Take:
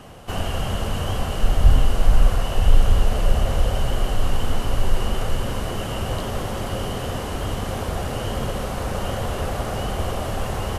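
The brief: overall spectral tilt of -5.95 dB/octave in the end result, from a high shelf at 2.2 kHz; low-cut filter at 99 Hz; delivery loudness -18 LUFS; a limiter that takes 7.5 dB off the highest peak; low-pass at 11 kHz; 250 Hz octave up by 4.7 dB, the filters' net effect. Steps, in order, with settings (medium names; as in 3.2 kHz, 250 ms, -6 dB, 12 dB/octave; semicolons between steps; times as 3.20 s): high-pass 99 Hz; low-pass 11 kHz; peaking EQ 250 Hz +6.5 dB; treble shelf 2.2 kHz -7.5 dB; trim +10.5 dB; peak limiter -8 dBFS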